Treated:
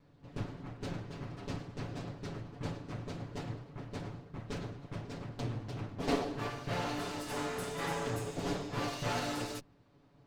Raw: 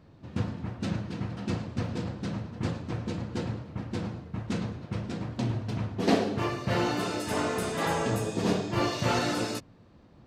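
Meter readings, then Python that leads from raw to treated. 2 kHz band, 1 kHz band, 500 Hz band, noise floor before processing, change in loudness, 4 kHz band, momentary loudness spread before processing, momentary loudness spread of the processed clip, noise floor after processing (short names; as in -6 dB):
-7.0 dB, -7.0 dB, -8.0 dB, -55 dBFS, -8.0 dB, -7.0 dB, 9 LU, 9 LU, -63 dBFS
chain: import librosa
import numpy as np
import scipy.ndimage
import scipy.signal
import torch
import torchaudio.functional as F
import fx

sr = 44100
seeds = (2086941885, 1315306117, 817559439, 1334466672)

y = fx.lower_of_two(x, sr, delay_ms=7.0)
y = y * librosa.db_to_amplitude(-6.5)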